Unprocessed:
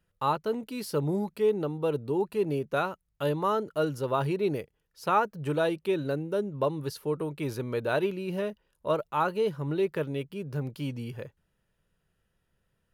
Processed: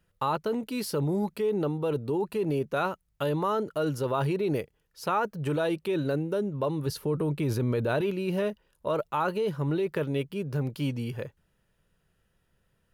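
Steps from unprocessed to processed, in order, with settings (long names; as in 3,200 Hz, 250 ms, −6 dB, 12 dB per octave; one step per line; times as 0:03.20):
0:06.86–0:08.01: low-shelf EQ 300 Hz +8.5 dB
in parallel at +3 dB: compressor whose output falls as the input rises −30 dBFS, ratio −1
on the sum: level −5.5 dB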